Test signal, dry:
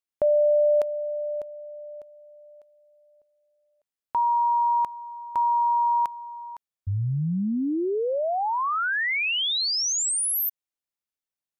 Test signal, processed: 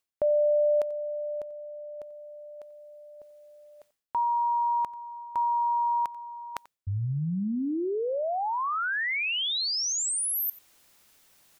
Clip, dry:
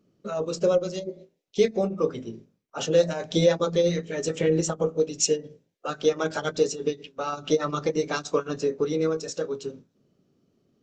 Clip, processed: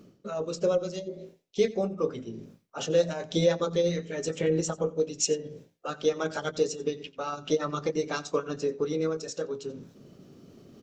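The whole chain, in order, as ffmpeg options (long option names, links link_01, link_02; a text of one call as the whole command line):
ffmpeg -i in.wav -af "areverse,acompressor=mode=upward:threshold=-34dB:ratio=2.5:attack=45:release=195:knee=2.83:detection=peak,areverse,aecho=1:1:89:0.0944,volume=-3.5dB" out.wav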